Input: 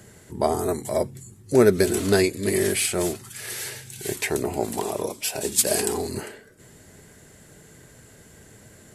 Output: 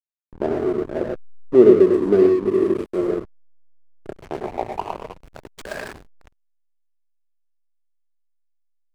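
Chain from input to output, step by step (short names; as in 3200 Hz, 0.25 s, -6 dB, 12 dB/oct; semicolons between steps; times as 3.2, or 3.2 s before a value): band-pass sweep 340 Hz -> 2400 Hz, 2.84–6.61; non-linear reverb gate 0.14 s rising, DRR 2 dB; backlash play -28.5 dBFS; gain +7 dB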